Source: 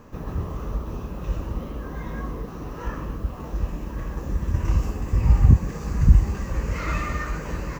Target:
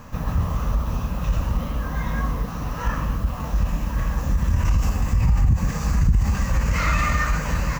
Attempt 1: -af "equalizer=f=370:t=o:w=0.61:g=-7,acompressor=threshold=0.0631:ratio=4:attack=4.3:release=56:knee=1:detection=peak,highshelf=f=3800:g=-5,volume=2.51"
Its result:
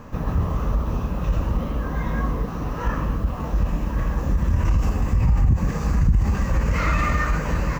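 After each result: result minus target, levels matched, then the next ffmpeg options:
8 kHz band -6.5 dB; 500 Hz band +3.5 dB
-af "equalizer=f=370:t=o:w=0.61:g=-7,acompressor=threshold=0.0631:ratio=4:attack=4.3:release=56:knee=1:detection=peak,highshelf=f=3800:g=3,volume=2.51"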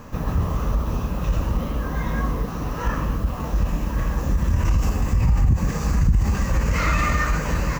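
500 Hz band +3.5 dB
-af "equalizer=f=370:t=o:w=0.61:g=-17,acompressor=threshold=0.0631:ratio=4:attack=4.3:release=56:knee=1:detection=peak,highshelf=f=3800:g=3,volume=2.51"

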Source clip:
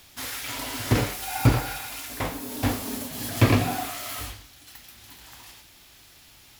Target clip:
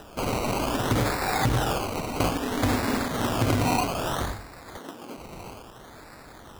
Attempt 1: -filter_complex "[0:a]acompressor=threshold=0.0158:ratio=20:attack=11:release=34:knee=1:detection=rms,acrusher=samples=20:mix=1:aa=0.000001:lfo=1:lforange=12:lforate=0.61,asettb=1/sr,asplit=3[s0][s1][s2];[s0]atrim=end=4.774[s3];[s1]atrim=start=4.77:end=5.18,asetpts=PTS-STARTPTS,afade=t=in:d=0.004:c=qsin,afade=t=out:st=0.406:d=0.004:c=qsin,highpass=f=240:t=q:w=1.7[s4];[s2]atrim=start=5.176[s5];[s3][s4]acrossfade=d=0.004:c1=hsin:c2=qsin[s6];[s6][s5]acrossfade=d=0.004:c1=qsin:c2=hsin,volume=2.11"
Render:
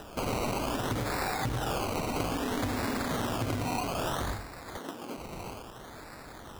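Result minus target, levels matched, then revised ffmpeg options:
compression: peak gain reduction +8.5 dB
-filter_complex "[0:a]acompressor=threshold=0.0447:ratio=20:attack=11:release=34:knee=1:detection=rms,acrusher=samples=20:mix=1:aa=0.000001:lfo=1:lforange=12:lforate=0.61,asettb=1/sr,asplit=3[s0][s1][s2];[s0]atrim=end=4.774[s3];[s1]atrim=start=4.77:end=5.18,asetpts=PTS-STARTPTS,afade=t=in:d=0.004:c=qsin,afade=t=out:st=0.406:d=0.004:c=qsin,highpass=f=240:t=q:w=1.7[s4];[s2]atrim=start=5.176[s5];[s3][s4]acrossfade=d=0.004:c1=hsin:c2=qsin[s6];[s6][s5]acrossfade=d=0.004:c1=qsin:c2=hsin,volume=2.11"

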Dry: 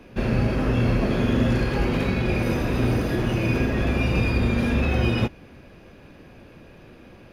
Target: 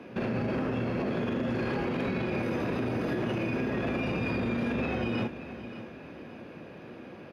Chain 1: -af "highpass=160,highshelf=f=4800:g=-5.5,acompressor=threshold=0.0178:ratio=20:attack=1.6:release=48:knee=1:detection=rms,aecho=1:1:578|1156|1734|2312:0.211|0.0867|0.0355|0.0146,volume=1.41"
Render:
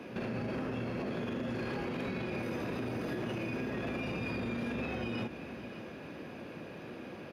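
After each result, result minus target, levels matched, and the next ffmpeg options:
8 kHz band +6.5 dB; compression: peak gain reduction +6 dB
-af "highpass=160,highshelf=f=4800:g=-14,acompressor=threshold=0.0178:ratio=20:attack=1.6:release=48:knee=1:detection=rms,aecho=1:1:578|1156|1734|2312:0.211|0.0867|0.0355|0.0146,volume=1.41"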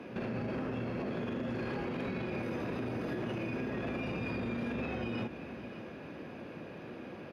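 compression: peak gain reduction +6 dB
-af "highpass=160,highshelf=f=4800:g=-14,acompressor=threshold=0.0376:ratio=20:attack=1.6:release=48:knee=1:detection=rms,aecho=1:1:578|1156|1734|2312:0.211|0.0867|0.0355|0.0146,volume=1.41"

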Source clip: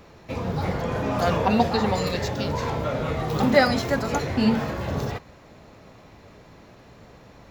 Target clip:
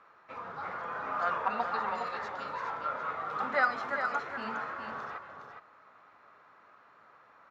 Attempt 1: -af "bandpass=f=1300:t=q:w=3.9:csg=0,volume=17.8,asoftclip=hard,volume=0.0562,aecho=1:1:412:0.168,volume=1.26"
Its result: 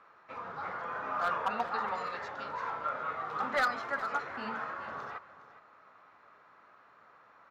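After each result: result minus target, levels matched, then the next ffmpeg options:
overload inside the chain: distortion +33 dB; echo-to-direct -8.5 dB
-af "bandpass=f=1300:t=q:w=3.9:csg=0,volume=7.5,asoftclip=hard,volume=0.133,aecho=1:1:412:0.168,volume=1.26"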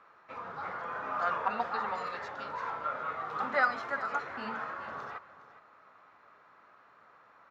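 echo-to-direct -8.5 dB
-af "bandpass=f=1300:t=q:w=3.9:csg=0,volume=7.5,asoftclip=hard,volume=0.133,aecho=1:1:412:0.447,volume=1.26"

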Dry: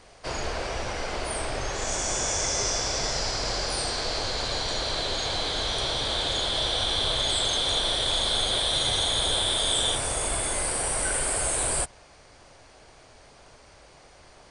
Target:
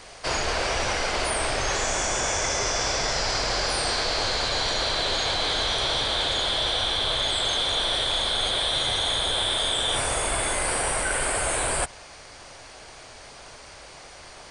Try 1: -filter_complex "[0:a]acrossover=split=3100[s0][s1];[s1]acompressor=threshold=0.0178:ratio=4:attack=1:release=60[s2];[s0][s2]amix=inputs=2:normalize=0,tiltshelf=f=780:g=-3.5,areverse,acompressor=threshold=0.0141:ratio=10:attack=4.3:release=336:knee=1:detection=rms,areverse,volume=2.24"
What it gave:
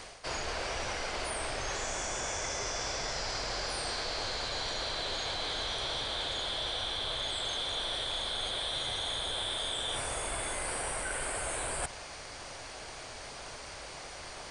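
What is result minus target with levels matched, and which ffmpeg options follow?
compression: peak gain reduction +10 dB
-filter_complex "[0:a]acrossover=split=3100[s0][s1];[s1]acompressor=threshold=0.0178:ratio=4:attack=1:release=60[s2];[s0][s2]amix=inputs=2:normalize=0,tiltshelf=f=780:g=-3.5,areverse,acompressor=threshold=0.0501:ratio=10:attack=4.3:release=336:knee=1:detection=rms,areverse,volume=2.24"

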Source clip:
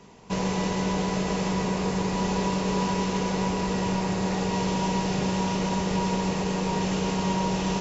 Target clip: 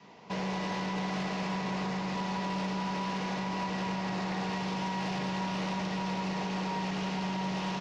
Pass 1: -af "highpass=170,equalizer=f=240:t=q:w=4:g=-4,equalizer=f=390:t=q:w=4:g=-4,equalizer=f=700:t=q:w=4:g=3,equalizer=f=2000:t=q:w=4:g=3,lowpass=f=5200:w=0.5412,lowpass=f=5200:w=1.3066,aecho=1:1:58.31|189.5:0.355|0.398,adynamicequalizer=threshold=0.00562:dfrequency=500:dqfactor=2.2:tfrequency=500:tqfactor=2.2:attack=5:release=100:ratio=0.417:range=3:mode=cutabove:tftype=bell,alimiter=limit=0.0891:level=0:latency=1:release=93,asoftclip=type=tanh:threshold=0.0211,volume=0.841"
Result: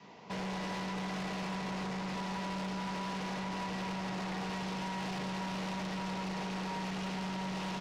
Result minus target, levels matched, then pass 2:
saturation: distortion +8 dB
-af "highpass=170,equalizer=f=240:t=q:w=4:g=-4,equalizer=f=390:t=q:w=4:g=-4,equalizer=f=700:t=q:w=4:g=3,equalizer=f=2000:t=q:w=4:g=3,lowpass=f=5200:w=0.5412,lowpass=f=5200:w=1.3066,aecho=1:1:58.31|189.5:0.355|0.398,adynamicequalizer=threshold=0.00562:dfrequency=500:dqfactor=2.2:tfrequency=500:tqfactor=2.2:attack=5:release=100:ratio=0.417:range=3:mode=cutabove:tftype=bell,alimiter=limit=0.0891:level=0:latency=1:release=93,asoftclip=type=tanh:threshold=0.0531,volume=0.841"

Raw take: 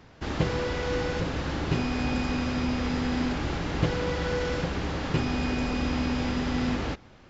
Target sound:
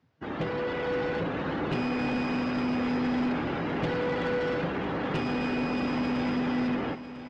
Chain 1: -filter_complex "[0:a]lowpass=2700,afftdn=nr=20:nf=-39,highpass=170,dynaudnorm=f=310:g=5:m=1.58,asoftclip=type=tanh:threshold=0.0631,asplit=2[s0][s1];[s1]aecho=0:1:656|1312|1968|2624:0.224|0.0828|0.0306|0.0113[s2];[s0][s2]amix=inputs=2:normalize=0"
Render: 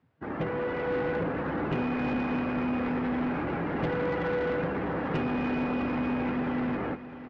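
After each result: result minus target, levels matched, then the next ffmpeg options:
8 kHz band -11.0 dB; echo 344 ms early
-filter_complex "[0:a]lowpass=6100,afftdn=nr=20:nf=-39,highpass=170,dynaudnorm=f=310:g=5:m=1.58,asoftclip=type=tanh:threshold=0.0631,asplit=2[s0][s1];[s1]aecho=0:1:656|1312|1968|2624:0.224|0.0828|0.0306|0.0113[s2];[s0][s2]amix=inputs=2:normalize=0"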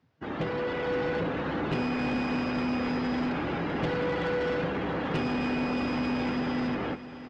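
echo 344 ms early
-filter_complex "[0:a]lowpass=6100,afftdn=nr=20:nf=-39,highpass=170,dynaudnorm=f=310:g=5:m=1.58,asoftclip=type=tanh:threshold=0.0631,asplit=2[s0][s1];[s1]aecho=0:1:1000|2000|3000|4000:0.224|0.0828|0.0306|0.0113[s2];[s0][s2]amix=inputs=2:normalize=0"

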